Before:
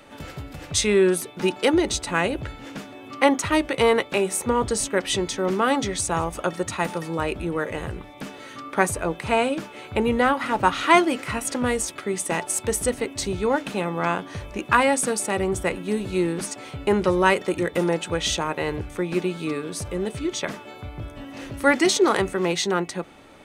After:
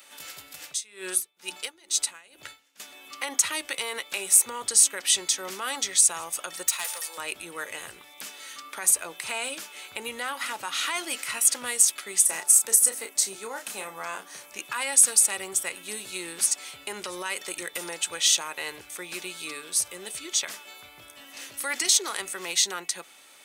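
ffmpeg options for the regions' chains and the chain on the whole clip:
-filter_complex "[0:a]asettb=1/sr,asplit=3[s0][s1][s2];[s0]atrim=end=0.654[s3];[s1]atrim=start=0.65:end=2.8,asetpts=PTS-STARTPTS,afade=t=in:d=0.004:c=qsin,afade=t=out:st=2.146:d=0.004:c=qsin,bandreject=f=60:t=h:w=6,bandreject=f=120:t=h:w=6,bandreject=f=180:t=h:w=6,bandreject=f=240:t=h:w=6,bandreject=f=300:t=h:w=6,bandreject=f=360:t=h:w=6,bandreject=f=420:t=h:w=6,aeval=exprs='val(0)*pow(10,-26*(0.5-0.5*cos(2*PI*2.2*n/s))/20)':c=same[s4];[s2]atrim=start=2.796[s5];[s3][s4]acrossfade=d=0.004:c1=hsin:c2=qsin[s6];[s6][s5]acrossfade=d=0.004:c1=qsin:c2=hsin,asettb=1/sr,asplit=3[s7][s8][s9];[s7]atrim=end=6.684[s10];[s8]atrim=start=6.68:end=7.18,asetpts=PTS-STARTPTS,afade=t=in:d=0.004:c=qsin,afade=t=out:st=0.496:d=0.004:c=qsin,highpass=f=470:w=0.5412,highpass=f=470:w=1.3066,highshelf=f=7200:g=6.5,aeval=exprs='clip(val(0),-1,0.0335)':c=same[s11];[s9]atrim=start=7.176[s12];[s10][s11]acrossfade=d=0.004:c1=hsin:c2=qsin[s13];[s13][s12]acrossfade=d=0.004:c1=qsin:c2=hsin,asettb=1/sr,asplit=3[s14][s15][s16];[s14]atrim=end=12.254[s17];[s15]atrim=start=12.25:end=14.52,asetpts=PTS-STARTPTS,afade=t=in:d=0.004:c=qsin,afade=t=out:st=2.266:d=0.004:c=qsin,highpass=f=160:w=0.5412,highpass=f=160:w=1.3066,equalizer=f=3200:t=o:w=1.4:g=-7,asplit=2[s18][s19];[s19]adelay=31,volume=0.422[s20];[s18][s20]amix=inputs=2:normalize=0,atrim=end_sample=100107[s21];[s16]atrim=start=14.516[s22];[s17][s21]acrossfade=d=0.004:c1=hsin:c2=qsin[s23];[s23][s22]acrossfade=d=0.004:c1=qsin:c2=hsin,alimiter=limit=0.188:level=0:latency=1:release=66,aderivative,volume=2.82"

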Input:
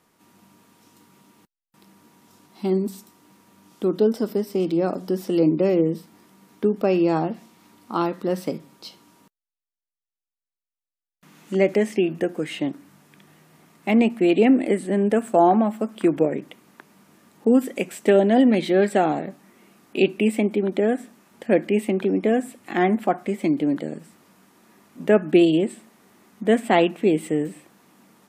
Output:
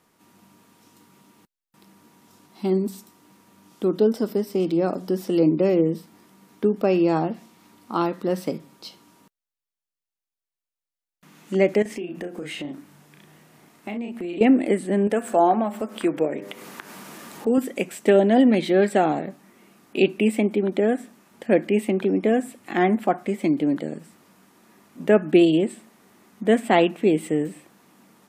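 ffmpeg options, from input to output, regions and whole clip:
-filter_complex "[0:a]asettb=1/sr,asplit=3[s0][s1][s2];[s0]atrim=end=11.824[s3];[s1]atrim=start=11.82:end=14.41,asetpts=PTS-STARTPTS,afade=t=in:d=0.004:c=qsin,afade=t=out:st=2.586:d=0.004:c=qsin,asplit=2[s4][s5];[s5]adelay=34,volume=0.631[s6];[s4][s6]amix=inputs=2:normalize=0,atrim=end_sample=114219,acompressor=threshold=0.0355:ratio=5:attack=3.2:release=140:knee=1:detection=peak[s7];[s2]atrim=start=14.406[s8];[s3][s7]acrossfade=d=0.004:c1=hsin:c2=qsin[s9];[s9][s8]acrossfade=d=0.004:c1=qsin:c2=hsin,asettb=1/sr,asplit=3[s10][s11][s12];[s10]atrim=end=15.074[s13];[s11]atrim=start=15.07:end=17.58,asetpts=PTS-STARTPTS,afade=t=in:d=0.004:c=qsin,afade=t=out:st=2.506:d=0.004:c=qsin,lowshelf=f=240:g=-10,bandreject=f=100.2:t=h:w=4,bandreject=f=200.4:t=h:w=4,bandreject=f=300.6:t=h:w=4,bandreject=f=400.8:t=h:w=4,bandreject=f=501:t=h:w=4,bandreject=f=601.2:t=h:w=4,bandreject=f=701.4:t=h:w=4,bandreject=f=801.6:t=h:w=4,bandreject=f=901.8:t=h:w=4,bandreject=f=1002:t=h:w=4,bandreject=f=1102.2:t=h:w=4,bandreject=f=1202.4:t=h:w=4,bandreject=f=1302.6:t=h:w=4,bandreject=f=1402.8:t=h:w=4,bandreject=f=1503:t=h:w=4,bandreject=f=1603.2:t=h:w=4,bandreject=f=1703.4:t=h:w=4,bandreject=f=1803.6:t=h:w=4,bandreject=f=1903.8:t=h:w=4,bandreject=f=2004:t=h:w=4,bandreject=f=2104.2:t=h:w=4,bandreject=f=2204.4:t=h:w=4,bandreject=f=2304.6:t=h:w=4,acompressor=mode=upward:threshold=0.0562:ratio=2.5:attack=3.2:release=140:knee=2.83:detection=peak[s14];[s12]atrim=start=17.576[s15];[s13][s14]acrossfade=d=0.004:c1=hsin:c2=qsin[s16];[s16][s15]acrossfade=d=0.004:c1=qsin:c2=hsin"

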